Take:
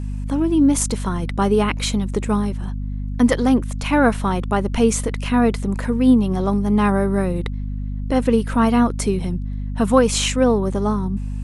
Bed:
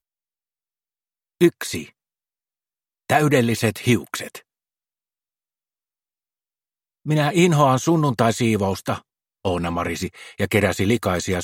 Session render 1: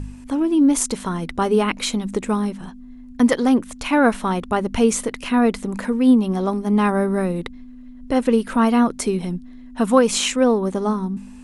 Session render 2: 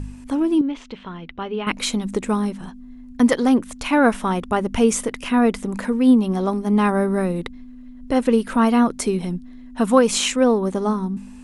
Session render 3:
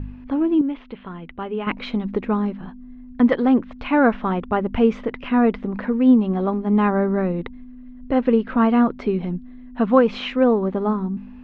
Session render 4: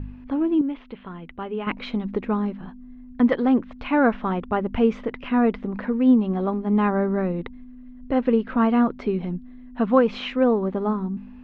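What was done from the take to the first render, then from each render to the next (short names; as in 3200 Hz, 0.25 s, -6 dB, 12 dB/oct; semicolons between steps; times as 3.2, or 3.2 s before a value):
de-hum 50 Hz, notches 4
0.61–1.67 ladder low-pass 3500 Hz, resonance 50%; 4.1–5.66 notch 4200 Hz
Bessel low-pass 2200 Hz, order 6; notch 940 Hz, Q 27
gain -2.5 dB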